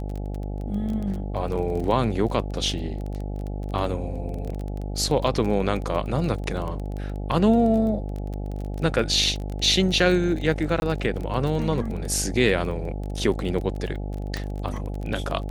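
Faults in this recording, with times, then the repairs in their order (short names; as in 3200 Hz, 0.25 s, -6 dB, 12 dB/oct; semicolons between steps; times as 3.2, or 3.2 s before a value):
buzz 50 Hz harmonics 17 -30 dBFS
crackle 22/s -29 dBFS
10.8–10.82 gap 21 ms
14.37 pop -16 dBFS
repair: de-click; de-hum 50 Hz, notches 17; interpolate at 10.8, 21 ms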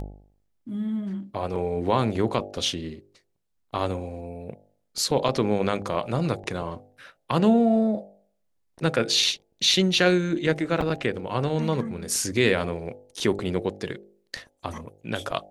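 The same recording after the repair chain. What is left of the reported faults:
none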